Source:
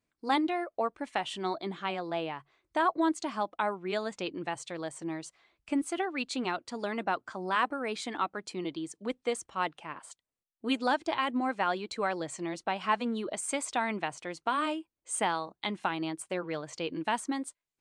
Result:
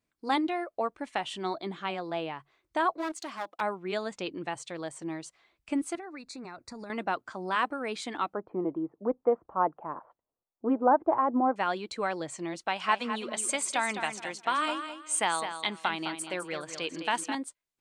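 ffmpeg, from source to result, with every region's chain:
ffmpeg -i in.wav -filter_complex "[0:a]asettb=1/sr,asplit=3[link_01][link_02][link_03];[link_01]atrim=end=2.954[link_04];[link_02]atrim=start=2.95:end=3.61,asetpts=PTS-STARTPTS,afade=type=in:duration=0.004:curve=qsin,afade=type=out:start_time=0.656:duration=0.004:curve=qsin,aeval=exprs='clip(val(0),-1,0.0178)':channel_layout=same,highpass=frequency=480:poles=1[link_05];[link_03]atrim=start=3.606[link_06];[link_04][link_05]acrossfade=duration=0.004:curve1=hsin:curve2=qsin[link_07];[link_07][link_06]acrossfade=duration=0.004:curve1=qsin:curve2=hsin,asettb=1/sr,asplit=3[link_08][link_09][link_10];[link_08]atrim=end=5.954[link_11];[link_09]atrim=start=5.95:end=6.9,asetpts=PTS-STARTPTS,afade=type=in:duration=0.004:curve=qsin,afade=type=out:start_time=0.946:duration=0.004:curve=qsin,asubboost=boost=9.5:cutoff=170,acompressor=threshold=-38dB:ratio=10:attack=3.2:release=140:knee=1:detection=peak,asuperstop=centerf=3100:order=4:qfactor=2.2[link_12];[link_10]atrim=start=6.896[link_13];[link_11][link_12]acrossfade=duration=0.004:curve1=hsin:curve2=qsin[link_14];[link_14][link_13]acrossfade=duration=0.004:curve1=qsin:curve2=hsin,asettb=1/sr,asplit=3[link_15][link_16][link_17];[link_15]atrim=end=8.344[link_18];[link_16]atrim=start=8.34:end=11.56,asetpts=PTS-STARTPTS,afade=type=in:duration=0.004:curve=qsin,afade=type=out:start_time=3.216:duration=0.004:curve=qsin,lowpass=frequency=1200:width=0.5412,lowpass=frequency=1200:width=1.3066,equalizer=frequency=670:width_type=o:width=2.5:gain=7.5[link_19];[link_17]atrim=start=11.556[link_20];[link_18][link_19]acrossfade=duration=0.004:curve1=hsin:curve2=qsin[link_21];[link_21][link_20]acrossfade=duration=0.004:curve1=qsin:curve2=hsin,asettb=1/sr,asplit=3[link_22][link_23][link_24];[link_22]atrim=end=12.594[link_25];[link_23]atrim=start=12.59:end=17.35,asetpts=PTS-STARTPTS,afade=type=in:duration=0.004:curve=qsin,afade=type=out:start_time=4.756:duration=0.004:curve=qsin,tiltshelf=frequency=740:gain=-5,aecho=1:1:209|418|627:0.355|0.0887|0.0222,atrim=end_sample=209916[link_26];[link_24]atrim=start=17.346[link_27];[link_25][link_26]acrossfade=duration=0.004:curve1=hsin:curve2=qsin[link_28];[link_28][link_27]acrossfade=duration=0.004:curve1=qsin:curve2=hsin" out.wav

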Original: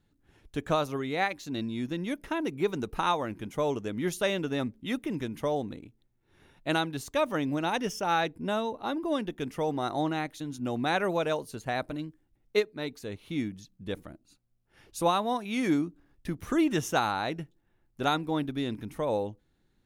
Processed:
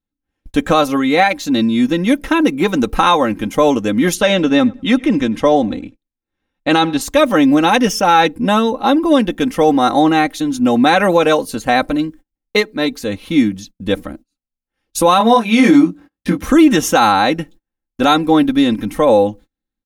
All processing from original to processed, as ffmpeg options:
ffmpeg -i in.wav -filter_complex "[0:a]asettb=1/sr,asplit=3[link_01][link_02][link_03];[link_01]atrim=end=4.154[link_04];[link_02]atrim=start=4.15:end=7.01,asetpts=PTS-STARTPTS,afade=type=in:duration=0.004:curve=qsin,afade=type=out:start_time=2.856:duration=0.004:curve=qsin,lowpass=7000,asplit=2[link_05][link_06];[link_06]adelay=98,lowpass=frequency=2400:poles=1,volume=-23.5dB,asplit=2[link_07][link_08];[link_08]adelay=98,lowpass=frequency=2400:poles=1,volume=0.31[link_09];[link_05][link_07][link_09]amix=inputs=3:normalize=0,atrim=end_sample=126126[link_10];[link_03]atrim=start=7.006[link_11];[link_04][link_10]acrossfade=duration=0.004:curve1=hsin:curve2=qsin[link_12];[link_12][link_11]acrossfade=duration=0.004:curve1=qsin:curve2=hsin,asettb=1/sr,asplit=3[link_13][link_14][link_15];[link_13]atrim=end=15.184[link_16];[link_14]atrim=start=15.18:end=16.44,asetpts=PTS-STARTPTS,afade=type=in:duration=0.004:curve=qsin,afade=type=out:start_time=1.256:duration=0.004:curve=qsin,highpass=97,highshelf=frequency=9400:gain=-7.5,asplit=2[link_17][link_18];[link_18]adelay=22,volume=-3dB[link_19];[link_17][link_19]amix=inputs=2:normalize=0,atrim=end_sample=55566[link_20];[link_15]atrim=start=16.436[link_21];[link_16][link_20]acrossfade=duration=0.004:curve1=hsin:curve2=qsin[link_22];[link_22][link_21]acrossfade=duration=0.004:curve1=qsin:curve2=hsin,agate=range=-32dB:threshold=-52dB:ratio=16:detection=peak,aecho=1:1:3.8:0.68,alimiter=level_in=17dB:limit=-1dB:release=50:level=0:latency=1,volume=-1dB" out.wav

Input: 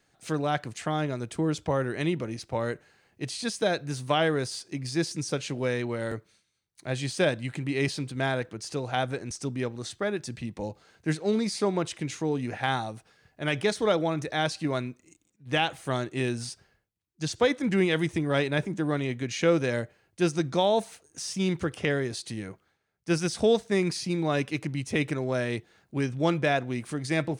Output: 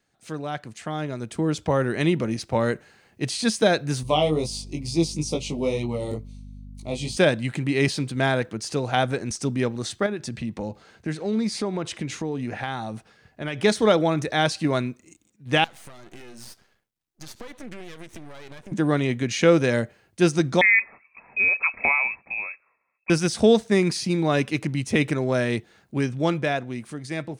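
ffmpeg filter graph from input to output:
ffmpeg -i in.wav -filter_complex "[0:a]asettb=1/sr,asplit=3[link_01][link_02][link_03];[link_01]atrim=end=4.034[link_04];[link_02]atrim=start=4.03:end=7.17,asetpts=PTS-STARTPTS,afade=type=in:duration=0.004:curve=qsin,afade=type=out:start_time=3.136:duration=0.004:curve=qsin,flanger=delay=17.5:depth=2.6:speed=2.2,aeval=exprs='val(0)+0.00562*(sin(2*PI*50*n/s)+sin(2*PI*2*50*n/s)/2+sin(2*PI*3*50*n/s)/3+sin(2*PI*4*50*n/s)/4+sin(2*PI*5*50*n/s)/5)':channel_layout=same,asuperstop=centerf=1600:order=4:qfactor=1.3[link_05];[link_03]atrim=start=7.166[link_06];[link_04][link_05]acrossfade=duration=0.004:curve1=hsin:curve2=qsin[link_07];[link_07][link_06]acrossfade=duration=0.004:curve1=qsin:curve2=hsin,asettb=1/sr,asplit=3[link_08][link_09][link_10];[link_08]atrim=end=10.064[link_11];[link_09]atrim=start=10.06:end=13.62,asetpts=PTS-STARTPTS,afade=type=in:duration=0.004:curve=qsin,afade=type=out:start_time=3.556:duration=0.004:curve=qsin,highshelf=frequency=5800:gain=-6,acompressor=threshold=-35dB:ratio=2.5:attack=3.2:release=140:knee=1:detection=peak[link_12];[link_10]atrim=start=13.616[link_13];[link_11][link_12]acrossfade=duration=0.004:curve1=hsin:curve2=qsin[link_14];[link_14][link_13]acrossfade=duration=0.004:curve1=qsin:curve2=hsin,asettb=1/sr,asplit=3[link_15][link_16][link_17];[link_15]atrim=end=15.644[link_18];[link_16]atrim=start=15.64:end=18.72,asetpts=PTS-STARTPTS,afade=type=in:duration=0.004:curve=qsin,afade=type=out:start_time=3.076:duration=0.004:curve=qsin,lowshelf=frequency=230:gain=-7,acompressor=threshold=-41dB:ratio=5:attack=3.2:release=140:knee=1:detection=peak,aeval=exprs='max(val(0),0)':channel_layout=same[link_19];[link_17]atrim=start=18.716[link_20];[link_18][link_19]acrossfade=duration=0.004:curve1=hsin:curve2=qsin[link_21];[link_21][link_20]acrossfade=duration=0.004:curve1=qsin:curve2=hsin,asettb=1/sr,asplit=3[link_22][link_23][link_24];[link_22]atrim=end=20.614[link_25];[link_23]atrim=start=20.61:end=23.1,asetpts=PTS-STARTPTS,afade=type=in:duration=0.004:curve=qsin,afade=type=out:start_time=2.486:duration=0.004:curve=qsin,bandreject=frequency=1200:width=9,lowpass=frequency=2300:width_type=q:width=0.5098,lowpass=frequency=2300:width_type=q:width=0.6013,lowpass=frequency=2300:width_type=q:width=0.9,lowpass=frequency=2300:width_type=q:width=2.563,afreqshift=-2700[link_26];[link_24]atrim=start=23.096[link_27];[link_25][link_26]acrossfade=duration=0.004:curve1=hsin:curve2=qsin[link_28];[link_28][link_27]acrossfade=duration=0.004:curve1=qsin:curve2=hsin,equalizer=frequency=220:width_type=o:width=0.21:gain=5.5,dynaudnorm=framelen=170:gausssize=17:maxgain=11.5dB,volume=-4dB" out.wav

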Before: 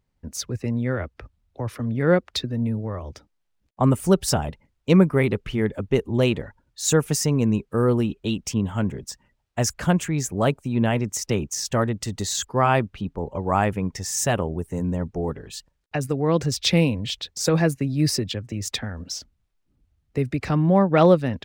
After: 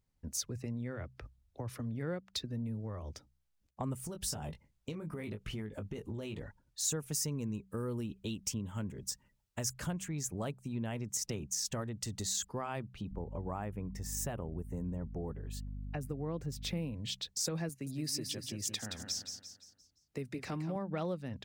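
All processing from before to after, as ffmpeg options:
ffmpeg -i in.wav -filter_complex "[0:a]asettb=1/sr,asplit=3[link_01][link_02][link_03];[link_01]atrim=end=4.074[link_04];[link_02]atrim=start=4.07:end=6.43,asetpts=PTS-STARTPTS,afade=type=in:duration=0.004:curve=qsin,afade=type=out:start_time=2.356:duration=0.004:curve=qsin,asplit=2[link_05][link_06];[link_06]adelay=19,volume=-6.5dB[link_07];[link_05][link_07]amix=inputs=2:normalize=0,atrim=end_sample=104076,acompressor=threshold=-26dB:ratio=12:attack=3.2:release=140:knee=1:detection=peak[link_08];[link_03]atrim=start=6.426[link_09];[link_04][link_08]acrossfade=duration=0.004:curve1=hsin:curve2=qsin[link_10];[link_10][link_09]acrossfade=duration=0.004:curve1=qsin:curve2=hsin,asettb=1/sr,asplit=3[link_11][link_12][link_13];[link_11]atrim=end=7.124[link_14];[link_12]atrim=start=7.12:end=9.86,asetpts=PTS-STARTPTS,afade=type=in:duration=0.004:curve=qsin,afade=type=out:start_time=2.736:duration=0.004:curve=qsin,highshelf=frequency=9300:gain=5.5,bandreject=frequency=730:width=7.1[link_15];[link_13]atrim=start=9.856[link_16];[link_14][link_15]acrossfade=duration=0.004:curve1=hsin:curve2=qsin[link_17];[link_17][link_16]acrossfade=duration=0.004:curve1=qsin:curve2=hsin,asettb=1/sr,asplit=3[link_18][link_19][link_20];[link_18]atrim=end=13.114[link_21];[link_19]atrim=start=13.11:end=16.94,asetpts=PTS-STARTPTS,afade=type=in:duration=0.004:curve=qsin,afade=type=out:start_time=3.826:duration=0.004:curve=qsin,equalizer=frequency=5500:width_type=o:width=2.2:gain=-11,aeval=exprs='val(0)+0.02*(sin(2*PI*50*n/s)+sin(2*PI*2*50*n/s)/2+sin(2*PI*3*50*n/s)/3+sin(2*PI*4*50*n/s)/4+sin(2*PI*5*50*n/s)/5)':channel_layout=same[link_22];[link_20]atrim=start=16.936[link_23];[link_21][link_22]acrossfade=duration=0.004:curve1=hsin:curve2=qsin[link_24];[link_24][link_23]acrossfade=duration=0.004:curve1=qsin:curve2=hsin,asettb=1/sr,asplit=3[link_25][link_26][link_27];[link_25]atrim=end=17.694[link_28];[link_26]atrim=start=17.69:end=20.76,asetpts=PTS-STARTPTS,afade=type=in:duration=0.004:curve=qsin,afade=type=out:start_time=3.066:duration=0.004:curve=qsin,highpass=frequency=230:poles=1,aecho=1:1:172|344|516|688|860:0.376|0.162|0.0695|0.0299|0.0128,atrim=end_sample=135387[link_29];[link_27]atrim=start=20.756[link_30];[link_28][link_29]acrossfade=duration=0.004:curve1=hsin:curve2=qsin[link_31];[link_31][link_30]acrossfade=duration=0.004:curve1=qsin:curve2=hsin,acompressor=threshold=-30dB:ratio=3,bass=frequency=250:gain=3,treble=frequency=4000:gain=7,bandreject=frequency=63.91:width_type=h:width=4,bandreject=frequency=127.82:width_type=h:width=4,bandreject=frequency=191.73:width_type=h:width=4,volume=-9dB" out.wav

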